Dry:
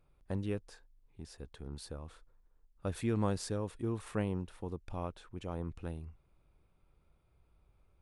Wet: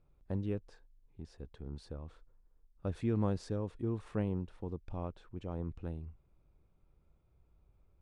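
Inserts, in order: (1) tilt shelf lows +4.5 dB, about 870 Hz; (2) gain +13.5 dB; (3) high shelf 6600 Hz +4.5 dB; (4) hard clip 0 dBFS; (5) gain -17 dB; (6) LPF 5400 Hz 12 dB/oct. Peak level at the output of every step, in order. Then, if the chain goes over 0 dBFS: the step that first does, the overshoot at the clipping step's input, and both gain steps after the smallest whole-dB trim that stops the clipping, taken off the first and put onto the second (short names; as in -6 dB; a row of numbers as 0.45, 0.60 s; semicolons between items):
-16.0, -2.5, -2.5, -2.5, -19.5, -19.5 dBFS; no overload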